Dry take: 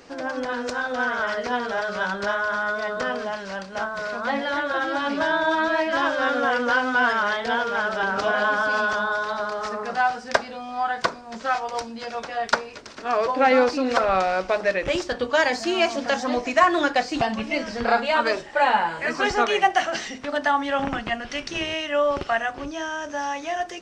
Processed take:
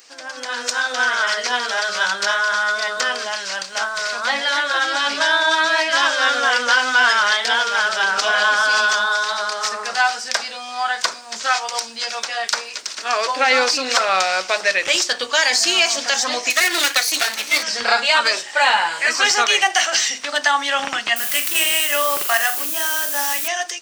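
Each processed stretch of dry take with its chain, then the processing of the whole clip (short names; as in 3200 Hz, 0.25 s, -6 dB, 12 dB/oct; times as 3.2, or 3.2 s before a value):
16.5–17.63 minimum comb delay 0.48 ms + HPF 290 Hz 24 dB/oct
21.16–23.48 median filter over 9 samples + requantised 8-bit, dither triangular + flutter echo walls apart 7.2 m, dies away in 0.25 s
whole clip: differentiator; AGC gain up to 9 dB; maximiser +15 dB; gain -3.5 dB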